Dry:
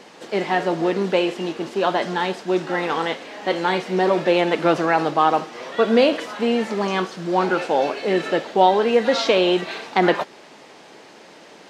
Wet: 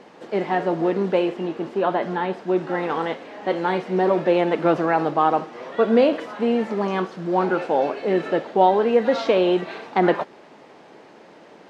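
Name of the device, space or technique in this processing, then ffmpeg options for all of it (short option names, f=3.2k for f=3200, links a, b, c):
through cloth: -filter_complex "[0:a]asettb=1/sr,asplit=3[a][b][c];[a]atrim=end=1.294[d];[b]atrim=start=1.29:end=2.62,asetpts=PTS-STARTPTS,afade=t=in:d=0.004:c=qsin,afade=t=out:st=1.326:d=0.004:c=qsin,acrossover=split=3500[e][f];[f]acompressor=threshold=-45dB:ratio=4:attack=1:release=60[g];[e][g]amix=inputs=2:normalize=0[h];[c]atrim=start=2.616[i];[d][h]acrossfade=d=0.004:c1=hsin:c2=qsin[j];[j][i]acrossfade=d=0.004:c1=qsin:c2=hsin,highshelf=f=2.6k:g=-14"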